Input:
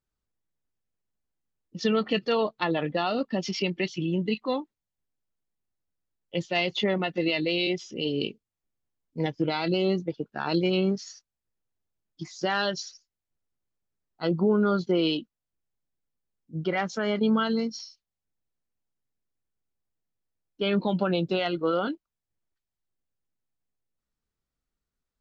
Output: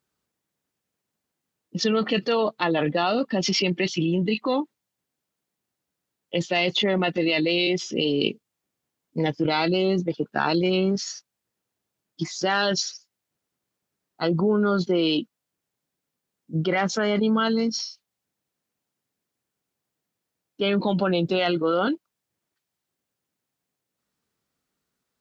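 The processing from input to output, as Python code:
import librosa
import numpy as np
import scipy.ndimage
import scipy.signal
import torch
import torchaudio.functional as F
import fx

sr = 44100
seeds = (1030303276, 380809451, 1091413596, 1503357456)

p1 = scipy.signal.sosfilt(scipy.signal.butter(2, 140.0, 'highpass', fs=sr, output='sos'), x)
p2 = fx.over_compress(p1, sr, threshold_db=-32.0, ratio=-1.0)
y = p1 + F.gain(torch.from_numpy(p2), 1.5).numpy()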